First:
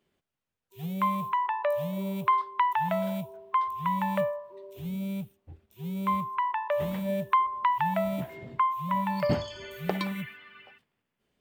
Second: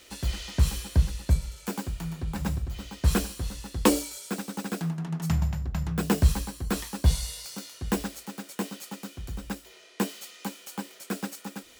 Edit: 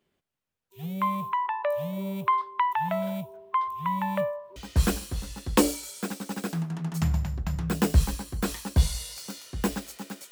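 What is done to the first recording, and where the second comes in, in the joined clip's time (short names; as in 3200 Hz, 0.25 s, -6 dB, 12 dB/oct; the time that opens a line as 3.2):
first
4.56 switch to second from 2.84 s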